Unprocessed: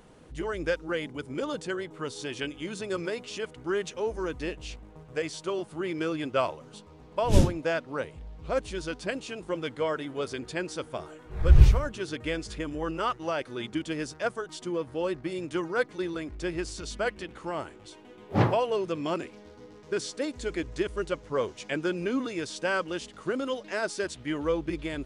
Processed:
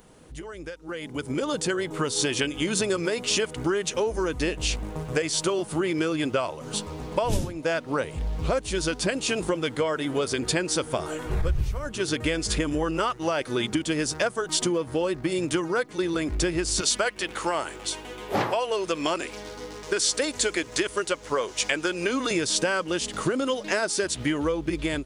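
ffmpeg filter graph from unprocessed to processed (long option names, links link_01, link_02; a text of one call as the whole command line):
ffmpeg -i in.wav -filter_complex "[0:a]asettb=1/sr,asplit=3[link_01][link_02][link_03];[link_01]atrim=end=16.814[link_04];[link_02]atrim=start=16.81:end=22.31,asetpts=PTS-STARTPTS,afade=type=in:duration=0.004:curve=qsin,afade=type=out:start_time=5.496:duration=0.004:curve=qsin,highpass=frequency=680:poles=1,aeval=exprs='val(0)+0.000708*(sin(2*PI*50*n/s)+sin(2*PI*2*50*n/s)/2+sin(2*PI*3*50*n/s)/3+sin(2*PI*4*50*n/s)/4+sin(2*PI*5*50*n/s)/5)':channel_layout=same[link_05];[link_03]atrim=start=22.306[link_06];[link_04][link_05]acrossfade=duration=0.004:curve1=hsin:curve2=qsin[link_07];[link_07][link_06]acrossfade=duration=0.004:curve1=qsin:curve2=hsin,acompressor=threshold=-38dB:ratio=10,highshelf=frequency=6900:gain=11.5,dynaudnorm=framelen=780:gausssize=3:maxgain=15.5dB" out.wav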